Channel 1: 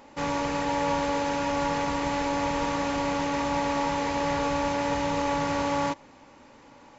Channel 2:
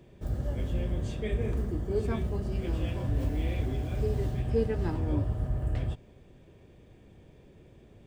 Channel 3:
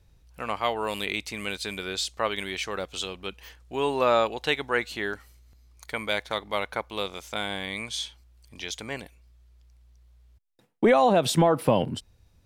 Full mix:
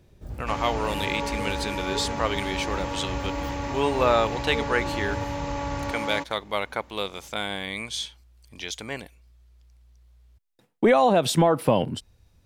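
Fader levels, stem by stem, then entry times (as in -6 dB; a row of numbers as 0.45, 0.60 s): -4.5, -5.0, +1.0 dB; 0.30, 0.00, 0.00 s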